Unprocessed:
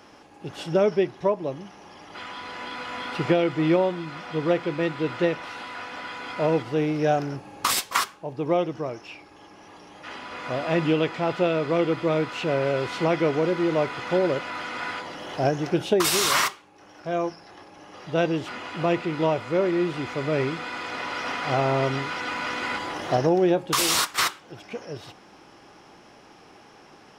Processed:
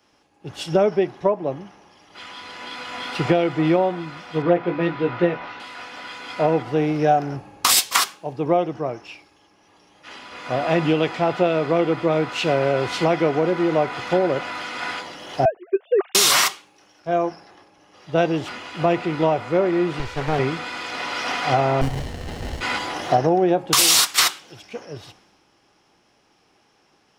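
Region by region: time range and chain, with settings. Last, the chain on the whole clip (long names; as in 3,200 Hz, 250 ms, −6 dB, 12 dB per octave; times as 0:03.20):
0:04.42–0:05.60: high-frequency loss of the air 180 metres + double-tracking delay 17 ms −5.5 dB
0:15.45–0:16.15: three sine waves on the formant tracks + expander for the loud parts 2.5 to 1, over −28 dBFS
0:19.99–0:20.39: lower of the sound and its delayed copy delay 2.1 ms + high-shelf EQ 12,000 Hz −8 dB + highs frequency-modulated by the lows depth 0.41 ms
0:21.81–0:22.61: high-pass filter 190 Hz + voice inversion scrambler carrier 3,300 Hz + windowed peak hold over 33 samples
whole clip: dynamic equaliser 740 Hz, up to +7 dB, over −44 dBFS, Q 6.5; downward compressor 3 to 1, threshold −23 dBFS; multiband upward and downward expander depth 70%; level +6 dB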